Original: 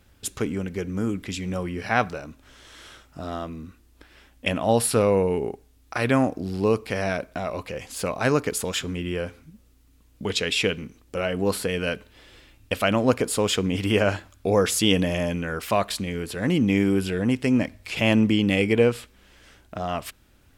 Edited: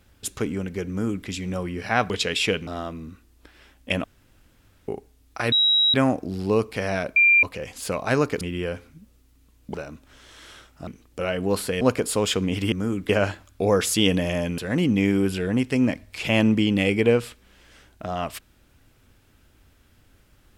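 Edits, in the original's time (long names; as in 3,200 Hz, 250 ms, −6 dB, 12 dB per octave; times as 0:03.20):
0:00.89–0:01.26: duplicate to 0:13.94
0:02.10–0:03.23: swap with 0:10.26–0:10.83
0:04.60–0:05.44: fill with room tone
0:06.08: insert tone 3,850 Hz −15.5 dBFS 0.42 s
0:07.30–0:07.57: beep over 2,380 Hz −12.5 dBFS
0:08.55–0:08.93: remove
0:11.77–0:13.03: remove
0:15.43–0:16.30: remove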